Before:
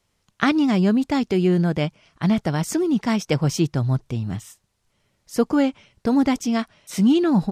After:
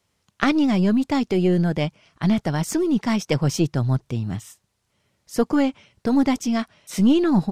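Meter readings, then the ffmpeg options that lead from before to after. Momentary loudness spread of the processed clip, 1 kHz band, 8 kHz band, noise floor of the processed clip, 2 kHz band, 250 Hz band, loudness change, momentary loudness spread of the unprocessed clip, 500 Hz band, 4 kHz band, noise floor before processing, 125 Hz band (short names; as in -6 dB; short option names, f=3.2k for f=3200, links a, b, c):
9 LU, -0.5 dB, 0.0 dB, -73 dBFS, -0.5 dB, -0.5 dB, -0.5 dB, 10 LU, -0.5 dB, -0.5 dB, -71 dBFS, -0.5 dB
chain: -af "highpass=55,aeval=exprs='0.668*(cos(1*acos(clip(val(0)/0.668,-1,1)))-cos(1*PI/2))+0.211*(cos(2*acos(clip(val(0)/0.668,-1,1)))-cos(2*PI/2))':c=same"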